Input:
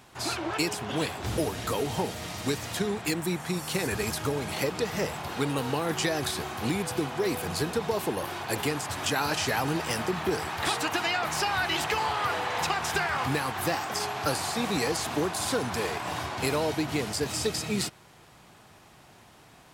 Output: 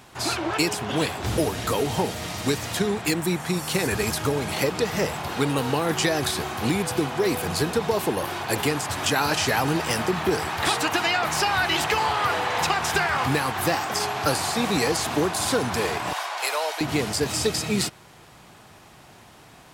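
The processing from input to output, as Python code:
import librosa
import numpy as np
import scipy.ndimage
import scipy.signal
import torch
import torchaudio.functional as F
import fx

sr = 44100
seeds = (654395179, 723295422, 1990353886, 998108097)

y = fx.highpass(x, sr, hz=610.0, slope=24, at=(16.13, 16.81))
y = F.gain(torch.from_numpy(y), 5.0).numpy()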